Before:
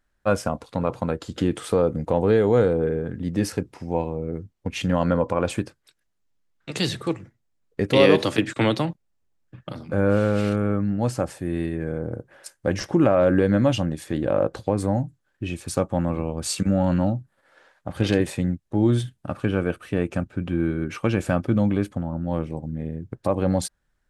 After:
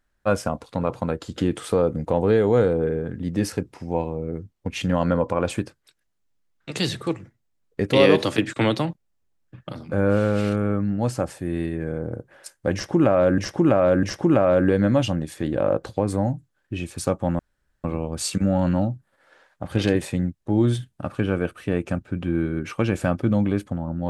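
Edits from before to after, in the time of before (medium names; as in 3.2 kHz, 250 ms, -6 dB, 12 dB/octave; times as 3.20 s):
12.73–13.38 s: loop, 3 plays
16.09 s: insert room tone 0.45 s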